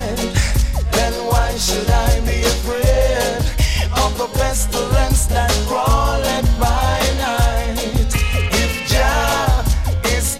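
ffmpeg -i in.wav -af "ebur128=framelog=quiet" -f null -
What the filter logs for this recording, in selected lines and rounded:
Integrated loudness:
  I:         -17.2 LUFS
  Threshold: -27.2 LUFS
Loudness range:
  LRA:         0.5 LU
  Threshold: -37.1 LUFS
  LRA low:   -17.3 LUFS
  LRA high:  -16.8 LUFS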